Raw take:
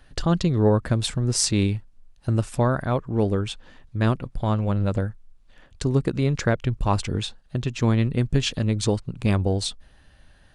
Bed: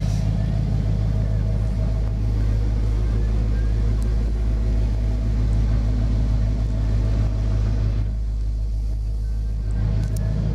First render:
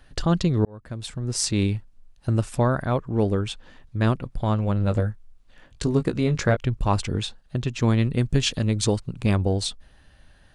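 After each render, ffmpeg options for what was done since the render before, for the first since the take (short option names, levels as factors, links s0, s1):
-filter_complex "[0:a]asettb=1/sr,asplit=3[s0][s1][s2];[s0]atrim=end=4.854[s3];[s1]atrim=start=4.85:end=6.57,asetpts=PTS-STARTPTS,afade=t=in:d=0.004:c=qsin,afade=t=out:st=1.716:d=0.004:c=qsin,asplit=2[s4][s5];[s5]adelay=19,volume=0.447[s6];[s4][s6]amix=inputs=2:normalize=0,atrim=end_sample=75852[s7];[s2]atrim=start=6.566[s8];[s3][s7]acrossfade=d=0.004:c1=hsin:c2=qsin[s9];[s9][s8]acrossfade=d=0.004:c1=qsin:c2=hsin,asettb=1/sr,asplit=3[s10][s11][s12];[s10]atrim=end=7.884[s13];[s11]atrim=start=7.88:end=9.2,asetpts=PTS-STARTPTS,afade=t=in:d=0.004:c=qsin,afade=t=out:st=1.316:d=0.004:c=qsin,highshelf=f=4400:g=4.5[s14];[s12]atrim=start=9.196[s15];[s13][s14]acrossfade=d=0.004:c1=hsin:c2=qsin[s16];[s16][s15]acrossfade=d=0.004:c1=qsin:c2=hsin,asplit=2[s17][s18];[s17]atrim=end=0.65,asetpts=PTS-STARTPTS,afade=t=out:st=0.646:d=0.004:c=hsin[s19];[s18]atrim=start=0.65,asetpts=PTS-STARTPTS,afade=t=in:d=1.08[s20];[s19][s20]concat=n=2:v=0:a=1"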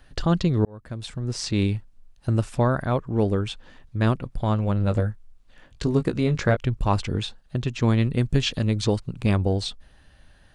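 -filter_complex "[0:a]acrossover=split=5500[s0][s1];[s1]acompressor=threshold=0.00562:ratio=4:attack=1:release=60[s2];[s0][s2]amix=inputs=2:normalize=0"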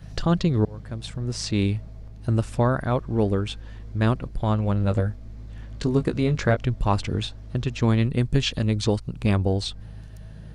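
-filter_complex "[1:a]volume=0.112[s0];[0:a][s0]amix=inputs=2:normalize=0"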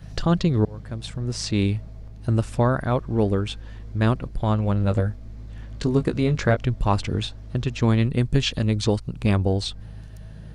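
-af "volume=1.12"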